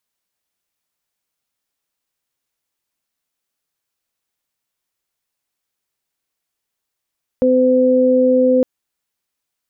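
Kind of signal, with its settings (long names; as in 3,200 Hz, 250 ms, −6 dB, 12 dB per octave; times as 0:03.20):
steady harmonic partials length 1.21 s, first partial 255 Hz, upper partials 3 dB, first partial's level −14.5 dB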